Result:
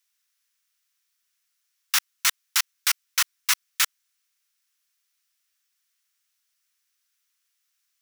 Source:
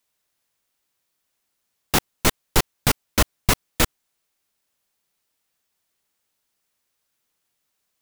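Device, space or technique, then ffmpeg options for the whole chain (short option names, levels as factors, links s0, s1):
headphones lying on a table: -filter_complex "[0:a]asettb=1/sr,asplit=3[s0][s1][s2];[s0]atrim=end=2.424[s3];[s1]atrim=start=2.42:end=3.06,asetpts=PTS-STARTPTS,afade=t=in:d=0.004:c=qsin,afade=t=out:st=0.636:d=0.004:c=qsin,highpass=650[s4];[s2]atrim=start=3.056[s5];[s3][s4]acrossfade=d=0.004:c1=hsin:c2=qsin[s6];[s6][s5]acrossfade=d=0.004:c1=qsin:c2=hsin,highpass=f=1300:w=0.5412,highpass=f=1300:w=1.3066,equalizer=f=5700:t=o:w=0.28:g=4.5"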